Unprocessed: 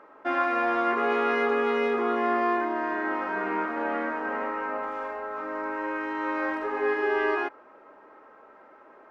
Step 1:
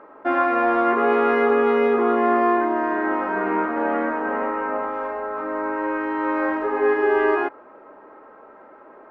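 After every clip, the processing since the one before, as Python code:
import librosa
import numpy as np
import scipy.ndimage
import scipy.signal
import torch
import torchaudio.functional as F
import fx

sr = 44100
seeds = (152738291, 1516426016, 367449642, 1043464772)

y = fx.lowpass(x, sr, hz=1200.0, slope=6)
y = y * librosa.db_to_amplitude(8.0)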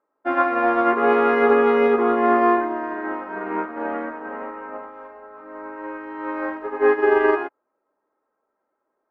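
y = fx.upward_expand(x, sr, threshold_db=-39.0, expansion=2.5)
y = y * librosa.db_to_amplitude(4.0)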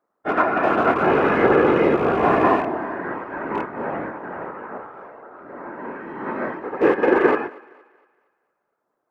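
y = fx.rattle_buzz(x, sr, strikes_db=-31.0, level_db=-25.0)
y = fx.whisperise(y, sr, seeds[0])
y = fx.echo_thinned(y, sr, ms=232, feedback_pct=41, hz=320.0, wet_db=-22)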